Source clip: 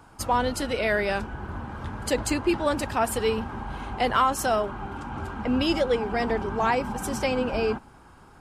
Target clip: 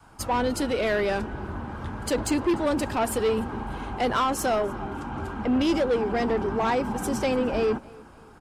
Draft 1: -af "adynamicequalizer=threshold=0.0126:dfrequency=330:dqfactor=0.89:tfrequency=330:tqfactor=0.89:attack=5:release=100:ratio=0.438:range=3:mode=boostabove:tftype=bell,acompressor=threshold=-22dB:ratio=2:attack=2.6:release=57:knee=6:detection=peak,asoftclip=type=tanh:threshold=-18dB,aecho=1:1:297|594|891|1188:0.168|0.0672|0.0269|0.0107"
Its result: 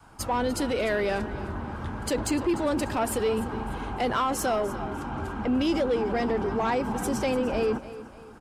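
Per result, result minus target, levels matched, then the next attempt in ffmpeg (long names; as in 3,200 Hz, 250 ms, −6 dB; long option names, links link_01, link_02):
downward compressor: peak gain reduction +6 dB; echo-to-direct +8.5 dB
-af "adynamicequalizer=threshold=0.0126:dfrequency=330:dqfactor=0.89:tfrequency=330:tqfactor=0.89:attack=5:release=100:ratio=0.438:range=3:mode=boostabove:tftype=bell,asoftclip=type=tanh:threshold=-18dB,aecho=1:1:297|594|891|1188:0.168|0.0672|0.0269|0.0107"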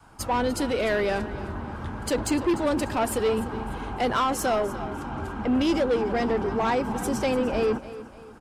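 echo-to-direct +8.5 dB
-af "adynamicequalizer=threshold=0.0126:dfrequency=330:dqfactor=0.89:tfrequency=330:tqfactor=0.89:attack=5:release=100:ratio=0.438:range=3:mode=boostabove:tftype=bell,asoftclip=type=tanh:threshold=-18dB,aecho=1:1:297|594|891:0.0631|0.0252|0.0101"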